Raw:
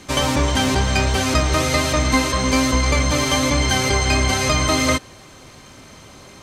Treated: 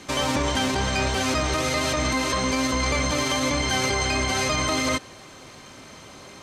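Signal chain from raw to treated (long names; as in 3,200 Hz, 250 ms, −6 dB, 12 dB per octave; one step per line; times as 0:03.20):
low-shelf EQ 120 Hz −9 dB
brickwall limiter −14 dBFS, peak gain reduction 8.5 dB
high-shelf EQ 11,000 Hz −7 dB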